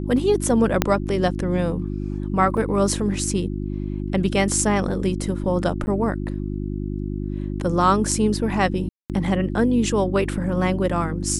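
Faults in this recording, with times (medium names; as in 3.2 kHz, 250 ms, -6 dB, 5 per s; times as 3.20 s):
hum 50 Hz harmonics 7 -27 dBFS
0.82 s: pop -2 dBFS
2.57 s: dropout 4.1 ms
5.86–5.87 s: dropout 10 ms
8.89–9.10 s: dropout 208 ms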